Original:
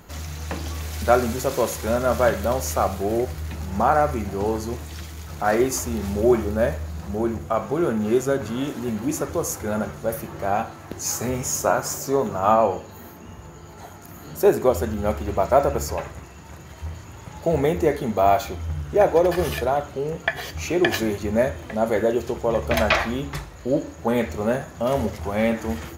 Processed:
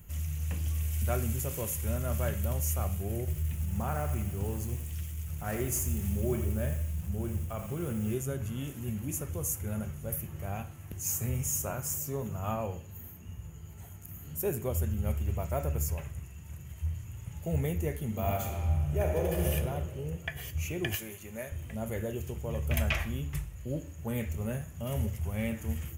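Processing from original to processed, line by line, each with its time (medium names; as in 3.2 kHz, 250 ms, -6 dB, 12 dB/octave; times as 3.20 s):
3.19–8.15 s: bit-crushed delay 85 ms, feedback 55%, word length 6-bit, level -9.5 dB
18.05–19.52 s: reverb throw, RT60 2.1 s, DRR 1 dB
20.95–21.52 s: high-pass 660 Hz 6 dB/octave
whole clip: FFT filter 120 Hz 0 dB, 300 Hz -16 dB, 480 Hz -16 dB, 810 Hz -20 dB, 1.5 kHz -17 dB, 2.9 kHz -7 dB, 4.1 kHz -21 dB, 8.4 kHz -2 dB, 14 kHz +1 dB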